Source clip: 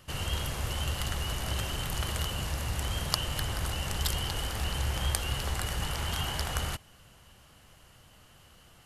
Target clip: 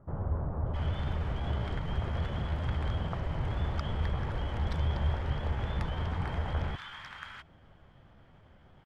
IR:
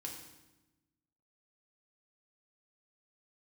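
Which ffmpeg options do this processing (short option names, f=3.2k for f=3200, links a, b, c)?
-filter_complex "[0:a]lowpass=1.4k,acrossover=split=1100[a][b];[b]adelay=670[c];[a][c]amix=inputs=2:normalize=0,asetrate=48091,aresample=44100,atempo=0.917004,volume=1.5dB"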